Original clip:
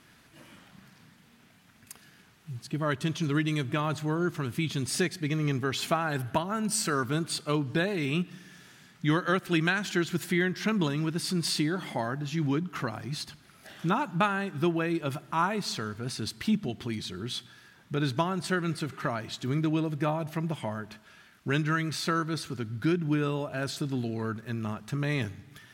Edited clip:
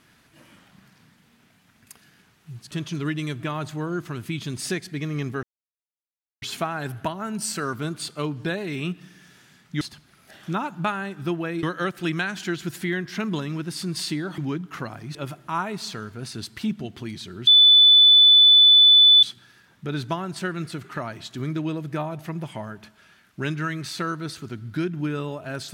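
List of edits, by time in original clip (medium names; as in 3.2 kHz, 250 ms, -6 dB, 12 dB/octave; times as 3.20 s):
2.71–3.00 s: delete
5.72 s: insert silence 0.99 s
11.86–12.40 s: delete
13.17–14.99 s: move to 9.11 s
17.31 s: add tone 3.49 kHz -9.5 dBFS 1.76 s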